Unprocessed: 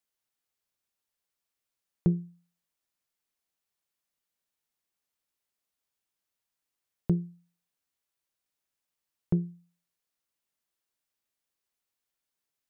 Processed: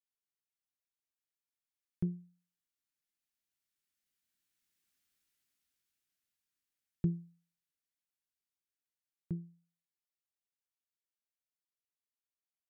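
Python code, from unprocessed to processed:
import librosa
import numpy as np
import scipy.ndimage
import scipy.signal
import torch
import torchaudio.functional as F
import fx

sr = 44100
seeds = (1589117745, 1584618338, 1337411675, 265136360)

y = fx.doppler_pass(x, sr, speed_mps=6, closest_m=3.6, pass_at_s=5.06)
y = fx.band_shelf(y, sr, hz=700.0, db=-9.0, octaves=1.7)
y = y * librosa.db_to_amplitude(5.0)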